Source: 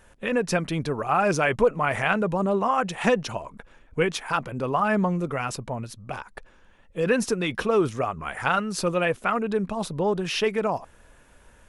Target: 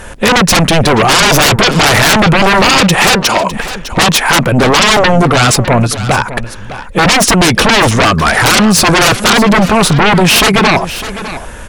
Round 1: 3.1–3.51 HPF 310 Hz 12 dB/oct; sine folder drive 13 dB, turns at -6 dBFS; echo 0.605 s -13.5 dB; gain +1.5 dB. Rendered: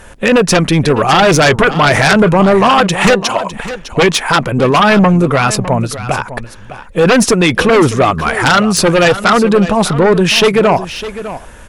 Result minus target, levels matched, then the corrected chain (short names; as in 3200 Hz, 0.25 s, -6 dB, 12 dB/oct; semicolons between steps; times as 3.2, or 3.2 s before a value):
sine folder: distortion -16 dB
3.1–3.51 HPF 310 Hz 12 dB/oct; sine folder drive 21 dB, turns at -6 dBFS; echo 0.605 s -13.5 dB; gain +1.5 dB